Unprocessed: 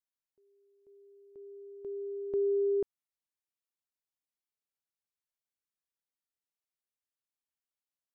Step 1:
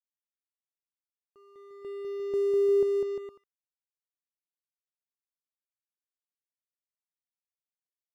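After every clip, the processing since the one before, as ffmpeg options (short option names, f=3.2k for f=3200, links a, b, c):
-af "aecho=1:1:200|350|462.5|546.9|610.2:0.631|0.398|0.251|0.158|0.1,aeval=exprs='sgn(val(0))*max(abs(val(0))-0.00501,0)':c=same"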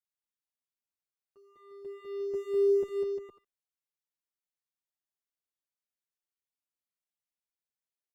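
-filter_complex "[0:a]asplit=2[a][b];[b]adelay=7.2,afreqshift=-2.3[c];[a][c]amix=inputs=2:normalize=1"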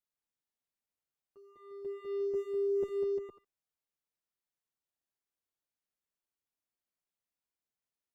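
-af "tiltshelf=f=1.4k:g=3,areverse,acompressor=threshold=-30dB:ratio=6,areverse"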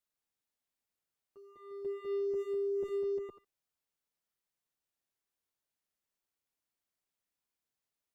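-af "alimiter=level_in=8dB:limit=-24dB:level=0:latency=1:release=27,volume=-8dB,volume=2dB"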